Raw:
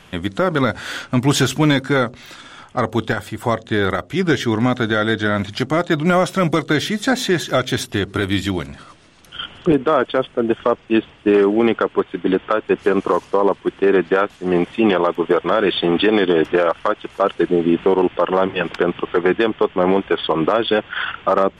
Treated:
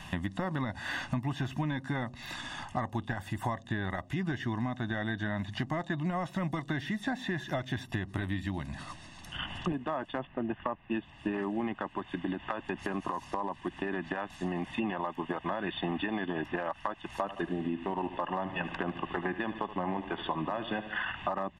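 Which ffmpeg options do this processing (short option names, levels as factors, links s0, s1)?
-filter_complex "[0:a]asettb=1/sr,asplit=3[s0][s1][s2];[s0]atrim=end=10.194[s3];[s1]atrim=start=10.19:end=10.92,asetpts=PTS-STARTPTS,afade=t=in:d=0.004:c=qsin,afade=t=out:st=0.726:d=0.004:c=qsin,lowpass=f=2900:w=0.5412,lowpass=f=2900:w=1.3066[s4];[s2]atrim=start=10.916[s5];[s3][s4]acrossfade=d=0.004:c1=hsin:c2=qsin[s6];[s6][s5]acrossfade=d=0.004:c1=qsin:c2=hsin,asettb=1/sr,asplit=3[s7][s8][s9];[s7]atrim=end=11.934[s10];[s8]atrim=start=11.93:end=14.65,asetpts=PTS-STARTPTS,afade=t=in:d=0.004:c=qsin,afade=t=out:st=2.716:d=0.004:c=qsin,acompressor=threshold=0.141:ratio=4:attack=3.2:release=140:knee=1:detection=peak[s11];[s9]atrim=start=14.646[s12];[s10][s11]acrossfade=d=0.004:c1=hsin:c2=qsin[s13];[s13][s12]acrossfade=d=0.004:c1=qsin:c2=hsin,asettb=1/sr,asplit=3[s14][s15][s16];[s14]atrim=end=17.214[s17];[s15]atrim=start=17.21:end=21.13,asetpts=PTS-STARTPTS,afade=t=in:d=0.004:c=qsin,afade=t=out:st=3.916:d=0.004:c=qsin,aecho=1:1:75|150|225|300|375:0.2|0.104|0.054|0.0281|0.0146,atrim=end_sample=172872[s18];[s16]atrim=start=21.126[s19];[s17][s18]acrossfade=d=0.004:c1=hsin:c2=qsin[s20];[s20][s19]acrossfade=d=0.004:c1=qsin:c2=hsin,acrossover=split=2800[s21][s22];[s22]acompressor=threshold=0.00708:ratio=4:attack=1:release=60[s23];[s21][s23]amix=inputs=2:normalize=0,aecho=1:1:1.1:0.81,acompressor=threshold=0.0355:ratio=6,volume=0.794"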